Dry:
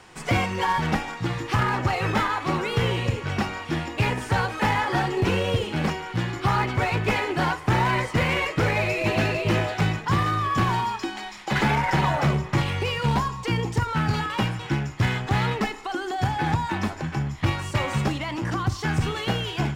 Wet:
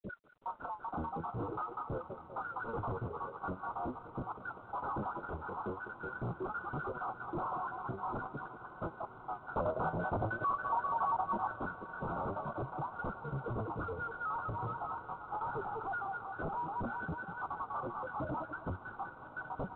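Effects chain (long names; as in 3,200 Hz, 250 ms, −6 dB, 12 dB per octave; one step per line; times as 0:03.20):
time-frequency cells dropped at random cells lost 84%
feedback echo with a high-pass in the loop 196 ms, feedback 71%, high-pass 750 Hz, level −13.5 dB
flanger 0.46 Hz, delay 4.6 ms, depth 8.4 ms, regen +57%
high-pass filter 49 Hz 12 dB per octave
sine wavefolder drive 16 dB, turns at −15.5 dBFS
brickwall limiter −26 dBFS, peak gain reduction 10.5 dB
hard clipping −34.5 dBFS, distortion −9 dB
Chebyshev low-pass filter 1,500 Hz, order 10
0:09.54–0:11.54: parametric band 780 Hz +8 dB 1.5 octaves
fake sidechain pumping 91 BPM, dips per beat 1, −6 dB, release 125 ms
feedback delay with all-pass diffusion 1,132 ms, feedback 69%, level −16 dB
G.726 32 kbit/s 8,000 Hz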